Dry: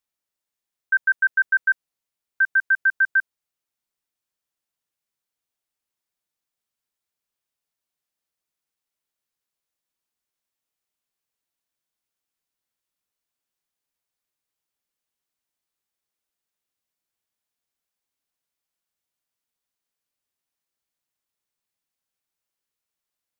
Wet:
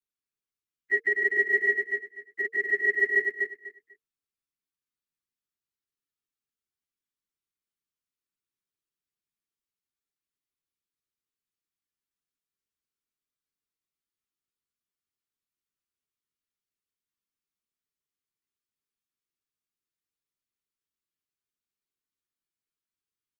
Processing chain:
partials spread apart or drawn together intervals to 123%
elliptic high-pass filter 1,600 Hz
in parallel at −10 dB: decimation without filtering 38×
on the sum: repeating echo 247 ms, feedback 21%, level −5 dB
frequency shifter −460 Hz
level −1.5 dB

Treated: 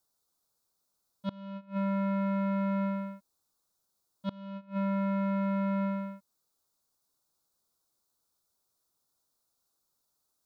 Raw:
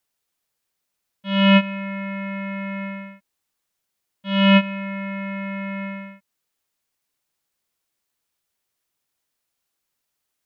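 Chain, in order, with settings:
gate with flip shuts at −21 dBFS, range −27 dB
flat-topped bell 2,300 Hz −15 dB 1.1 octaves

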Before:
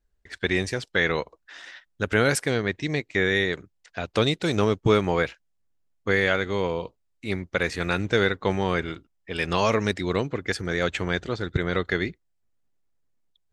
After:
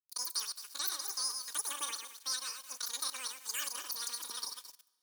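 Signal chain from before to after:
feedback delay that plays each chunk backwards 294 ms, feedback 42%, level −5.5 dB
centre clipping without the shift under −37.5 dBFS
first difference
notch comb filter 250 Hz
change of speed 2.69×
coupled-rooms reverb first 0.75 s, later 3 s, from −18 dB, DRR 19 dB
level +2 dB

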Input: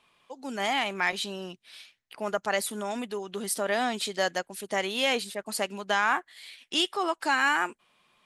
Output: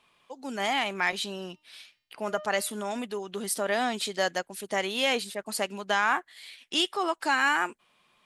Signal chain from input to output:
0:01.30–0:03.06: hum removal 305.3 Hz, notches 18

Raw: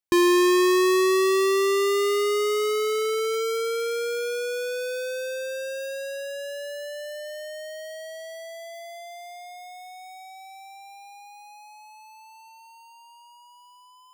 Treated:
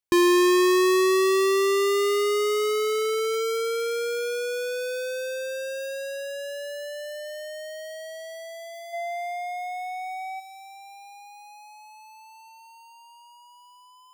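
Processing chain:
gain on a spectral selection 0:08.93–0:10.40, 510–3,100 Hz +10 dB

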